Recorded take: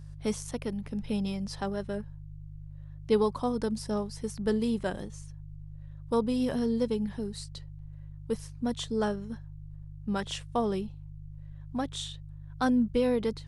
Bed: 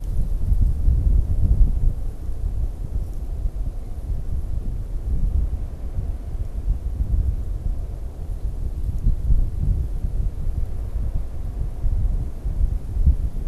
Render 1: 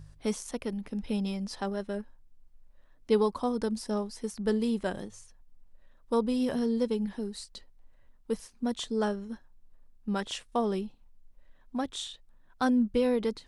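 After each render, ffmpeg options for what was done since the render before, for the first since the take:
ffmpeg -i in.wav -af "bandreject=frequency=50:width_type=h:width=4,bandreject=frequency=100:width_type=h:width=4,bandreject=frequency=150:width_type=h:width=4" out.wav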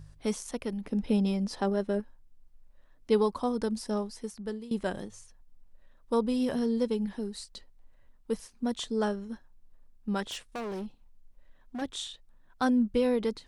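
ffmpeg -i in.wav -filter_complex "[0:a]asettb=1/sr,asplit=3[link_01][link_02][link_03];[link_01]atrim=end=0.864[link_04];[link_02]atrim=start=0.86:end=2,asetpts=PTS-STARTPTS,afade=type=in:duration=0.004:curve=qsin,afade=type=out:start_time=1.136:duration=0.004:curve=qsin,equalizer=frequency=340:width=0.48:gain=6[link_05];[link_03]atrim=start=1.996[link_06];[link_04][link_05]acrossfade=duration=0.004:curve1=hsin:curve2=qsin[link_07];[link_07][link_06]acrossfade=duration=0.004:curve1=qsin:curve2=hsin,asettb=1/sr,asplit=3[link_08][link_09][link_10];[link_08]atrim=end=10.244[link_11];[link_09]atrim=start=10.24:end=11.82,asetpts=PTS-STARTPTS,afade=type=in:duration=0.004:curve=qsin,afade=type=out:start_time=1.576:duration=0.004:curve=qsin,volume=33.5dB,asoftclip=hard,volume=-33.5dB[link_12];[link_10]atrim=start=11.816[link_13];[link_11][link_12]acrossfade=duration=0.004:curve1=hsin:curve2=qsin[link_14];[link_14][link_13]acrossfade=duration=0.004:curve1=qsin:curve2=hsin,asplit=2[link_15][link_16];[link_15]atrim=end=4.71,asetpts=PTS-STARTPTS,afade=type=out:start_time=4.04:duration=0.67:silence=0.112202[link_17];[link_16]atrim=start=4.71,asetpts=PTS-STARTPTS,afade=type=in:duration=0.004:curve=hsin:silence=0.112202[link_18];[link_17][link_18]concat=n=2:v=0:a=1" out.wav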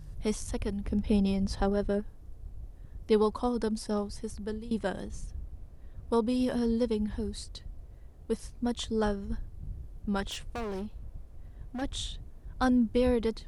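ffmpeg -i in.wav -i bed.wav -filter_complex "[1:a]volume=-19.5dB[link_01];[0:a][link_01]amix=inputs=2:normalize=0" out.wav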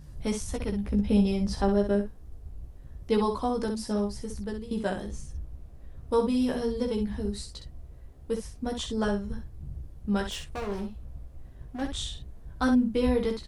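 ffmpeg -i in.wav -af "aecho=1:1:15|64:0.668|0.473" out.wav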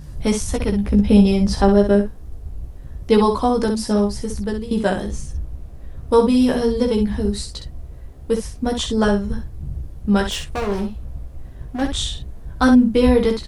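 ffmpeg -i in.wav -af "volume=10.5dB" out.wav

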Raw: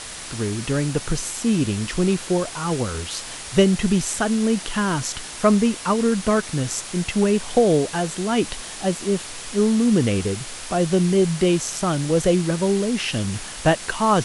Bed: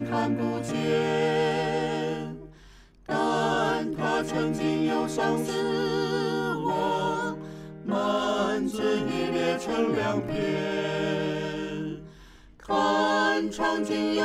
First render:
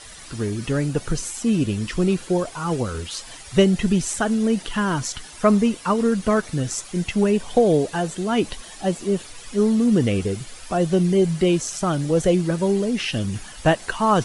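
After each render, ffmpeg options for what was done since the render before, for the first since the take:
ffmpeg -i in.wav -af "afftdn=noise_reduction=11:noise_floor=-35" out.wav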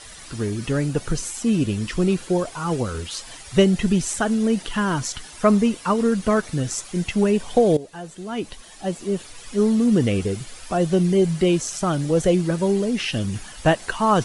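ffmpeg -i in.wav -filter_complex "[0:a]asplit=2[link_01][link_02];[link_01]atrim=end=7.77,asetpts=PTS-STARTPTS,afade=type=out:start_time=7.766:duration=0.004:curve=hsin:silence=0.16788[link_03];[link_02]atrim=start=7.77,asetpts=PTS-STARTPTS,afade=type=in:duration=1.86:silence=0.16788[link_04];[link_03][link_04]concat=n=2:v=0:a=1" out.wav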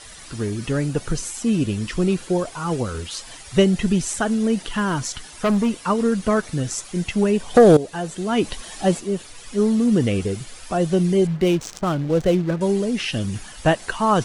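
ffmpeg -i in.wav -filter_complex "[0:a]asettb=1/sr,asplit=3[link_01][link_02][link_03];[link_01]atrim=end=4.714[link_04];[link_02]atrim=start=4.71:end=5.82,asetpts=PTS-STARTPTS,afade=type=in:duration=0.004:curve=qsin,afade=type=out:start_time=1.106:duration=0.004:curve=qsin,asoftclip=type=hard:threshold=-15dB[link_05];[link_03]atrim=start=5.816[link_06];[link_04][link_05]acrossfade=duration=0.004:curve1=hsin:curve2=qsin[link_07];[link_07][link_06]acrossfade=duration=0.004:curve1=qsin:curve2=hsin,asplit=3[link_08][link_09][link_10];[link_08]afade=type=out:start_time=7.54:duration=0.02[link_11];[link_09]aeval=exprs='0.501*sin(PI/2*1.58*val(0)/0.501)':channel_layout=same,afade=type=in:start_time=7.54:duration=0.02,afade=type=out:start_time=8.99:duration=0.02[link_12];[link_10]afade=type=in:start_time=8.99:duration=0.02[link_13];[link_11][link_12][link_13]amix=inputs=3:normalize=0,asettb=1/sr,asplit=3[link_14][link_15][link_16];[link_14]atrim=end=11.274[link_17];[link_15]atrim=start=11.27:end=12.61,asetpts=PTS-STARTPTS,afade=type=in:duration=0.004:curve=qsin,afade=type=out:start_time=1.336:duration=0.004:curve=qsin,adynamicsmooth=sensitivity=6.5:basefreq=530[link_18];[link_16]atrim=start=12.606[link_19];[link_17][link_18]acrossfade=duration=0.004:curve1=hsin:curve2=qsin[link_20];[link_20][link_19]acrossfade=duration=0.004:curve1=qsin:curve2=hsin" out.wav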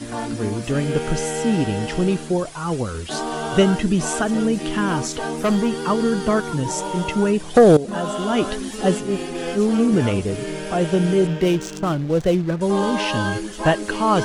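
ffmpeg -i in.wav -i bed.wav -filter_complex "[1:a]volume=-1.5dB[link_01];[0:a][link_01]amix=inputs=2:normalize=0" out.wav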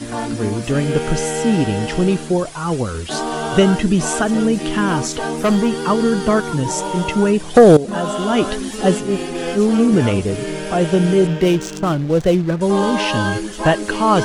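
ffmpeg -i in.wav -af "volume=3.5dB,alimiter=limit=-2dB:level=0:latency=1" out.wav

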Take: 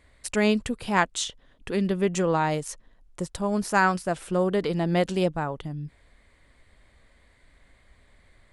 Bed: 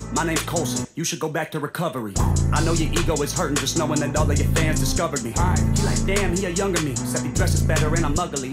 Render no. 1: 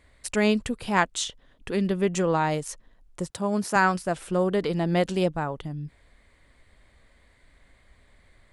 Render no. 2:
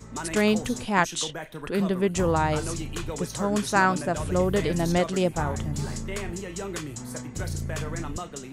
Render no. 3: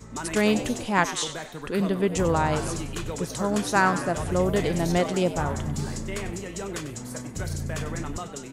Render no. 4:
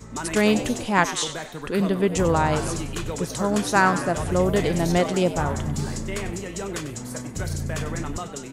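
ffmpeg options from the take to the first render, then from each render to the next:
ffmpeg -i in.wav -filter_complex "[0:a]asettb=1/sr,asplit=3[link_01][link_02][link_03];[link_01]atrim=end=3.304[link_04];[link_02]atrim=start=3.3:end=3.76,asetpts=PTS-STARTPTS,afade=type=in:duration=0.004:curve=qsin,afade=type=out:start_time=0.456:duration=0.004:curve=qsin,highpass=frequency=94:width=0.5412,highpass=frequency=94:width=1.3066[link_05];[link_03]atrim=start=3.756[link_06];[link_04][link_05]acrossfade=duration=0.004:curve1=hsin:curve2=qsin[link_07];[link_07][link_06]acrossfade=duration=0.004:curve1=qsin:curve2=hsin" out.wav
ffmpeg -i in.wav -i bed.wav -filter_complex "[1:a]volume=-11.5dB[link_01];[0:a][link_01]amix=inputs=2:normalize=0" out.wav
ffmpeg -i in.wav -filter_complex "[0:a]asplit=6[link_01][link_02][link_03][link_04][link_05][link_06];[link_02]adelay=96,afreqshift=85,volume=-13dB[link_07];[link_03]adelay=192,afreqshift=170,volume=-18.7dB[link_08];[link_04]adelay=288,afreqshift=255,volume=-24.4dB[link_09];[link_05]adelay=384,afreqshift=340,volume=-30dB[link_10];[link_06]adelay=480,afreqshift=425,volume=-35.7dB[link_11];[link_01][link_07][link_08][link_09][link_10][link_11]amix=inputs=6:normalize=0" out.wav
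ffmpeg -i in.wav -af "volume=2.5dB" out.wav

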